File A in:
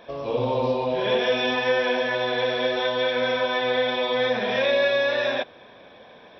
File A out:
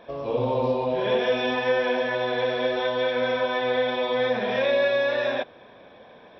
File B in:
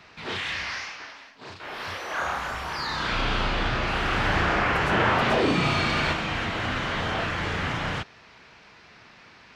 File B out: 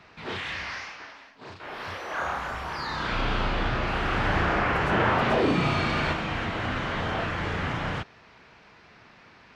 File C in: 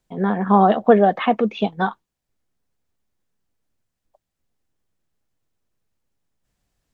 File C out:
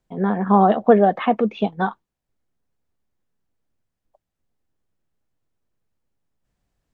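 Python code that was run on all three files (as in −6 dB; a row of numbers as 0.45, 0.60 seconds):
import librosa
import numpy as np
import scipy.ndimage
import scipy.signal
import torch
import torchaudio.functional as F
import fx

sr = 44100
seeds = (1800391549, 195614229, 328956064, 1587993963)

y = fx.high_shelf(x, sr, hz=2400.0, db=-7.0)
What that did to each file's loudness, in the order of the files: −1.0, −1.5, −0.5 LU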